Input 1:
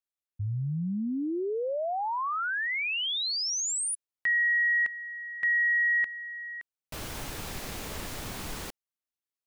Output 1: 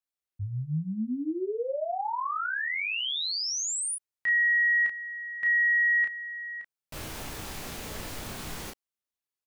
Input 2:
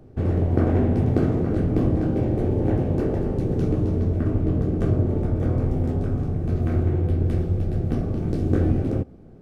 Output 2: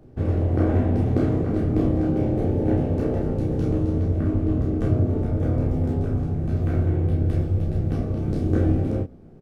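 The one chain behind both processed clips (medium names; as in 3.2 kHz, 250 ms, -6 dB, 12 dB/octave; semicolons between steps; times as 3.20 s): early reflections 19 ms -8.5 dB, 32 ms -3.5 dB; trim -2.5 dB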